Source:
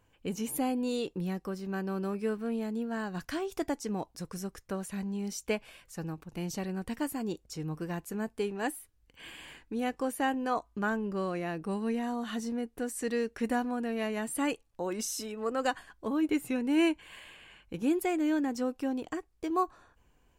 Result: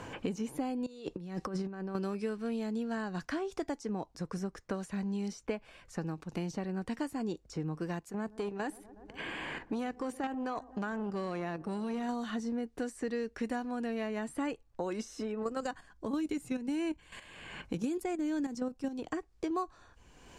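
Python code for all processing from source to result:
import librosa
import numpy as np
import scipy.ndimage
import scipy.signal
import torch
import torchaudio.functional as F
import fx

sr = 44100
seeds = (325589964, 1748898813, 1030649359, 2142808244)

y = fx.chain(x, sr, fx.lowpass(hz=12000.0, slope=12),
    fx.over_compress(threshold_db=-40.0, ratio=-0.5), at=(0.86, 1.95))
y = fx.chain(y, sr, fx.level_steps(step_db=9),
    fx.echo_wet_lowpass(ms=122, feedback_pct=67, hz=1000.0, wet_db=-22.5),
    fx.transformer_sat(knee_hz=1200.0), at=(7.99, 12.09))
y = fx.chain(y, sr, fx.level_steps(step_db=10),
    fx.bass_treble(bass_db=6, treble_db=10), at=(15.42, 18.99))
y = scipy.signal.sosfilt(scipy.signal.butter(2, 6300.0, 'lowpass', fs=sr, output='sos'), y)
y = fx.peak_eq(y, sr, hz=2900.0, db=-4.0, octaves=0.96)
y = fx.band_squash(y, sr, depth_pct=100)
y = y * librosa.db_to_amplitude(-2.5)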